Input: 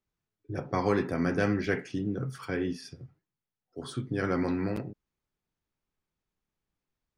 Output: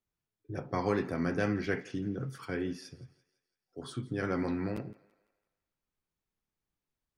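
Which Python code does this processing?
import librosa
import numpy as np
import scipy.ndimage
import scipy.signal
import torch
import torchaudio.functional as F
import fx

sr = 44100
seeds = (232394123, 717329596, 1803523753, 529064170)

y = fx.echo_thinned(x, sr, ms=168, feedback_pct=48, hz=380.0, wet_db=-20.5)
y = fx.wow_flutter(y, sr, seeds[0], rate_hz=2.1, depth_cents=27.0)
y = F.gain(torch.from_numpy(y), -3.5).numpy()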